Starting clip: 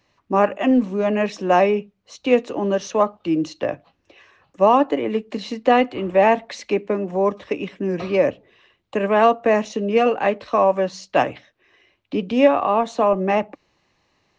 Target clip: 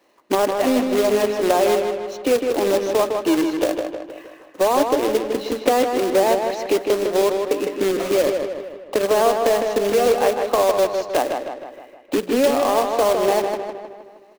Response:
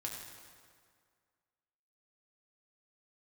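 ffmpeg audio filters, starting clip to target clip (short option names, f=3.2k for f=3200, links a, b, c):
-filter_complex "[0:a]highpass=f=310:w=0.5412,highpass=f=310:w=1.3066,tiltshelf=f=970:g=7,acompressor=threshold=-27dB:ratio=2.5,acrusher=bits=2:mode=log:mix=0:aa=0.000001,asplit=2[a][b];[b]adelay=156,lowpass=f=3.9k:p=1,volume=-5dB,asplit=2[c][d];[d]adelay=156,lowpass=f=3.9k:p=1,volume=0.54,asplit=2[e][f];[f]adelay=156,lowpass=f=3.9k:p=1,volume=0.54,asplit=2[g][h];[h]adelay=156,lowpass=f=3.9k:p=1,volume=0.54,asplit=2[i][j];[j]adelay=156,lowpass=f=3.9k:p=1,volume=0.54,asplit=2[k][l];[l]adelay=156,lowpass=f=3.9k:p=1,volume=0.54,asplit=2[m][n];[n]adelay=156,lowpass=f=3.9k:p=1,volume=0.54[o];[a][c][e][g][i][k][m][o]amix=inputs=8:normalize=0,volume=6dB"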